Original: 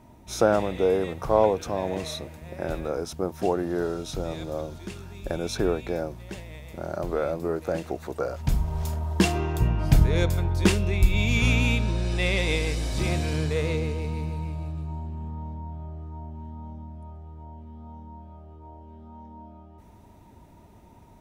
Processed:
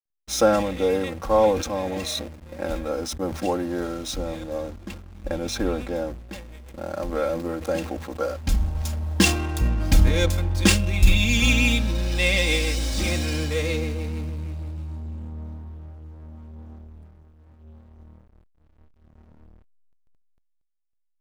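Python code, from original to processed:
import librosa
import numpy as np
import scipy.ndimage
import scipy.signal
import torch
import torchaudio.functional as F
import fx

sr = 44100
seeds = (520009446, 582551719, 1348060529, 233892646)

y = scipy.signal.medfilt(x, 3)
y = fx.high_shelf(y, sr, hz=2900.0, db=fx.steps((0.0, 10.5), (4.16, 5.5), (6.33, 11.0)))
y = y + 0.9 * np.pad(y, (int(3.7 * sr / 1000.0), 0))[:len(y)]
y = fx.dynamic_eq(y, sr, hz=110.0, q=0.88, threshold_db=-35.0, ratio=4.0, max_db=3)
y = fx.backlash(y, sr, play_db=-32.5)
y = fx.sustainer(y, sr, db_per_s=78.0)
y = F.gain(torch.from_numpy(y), -2.0).numpy()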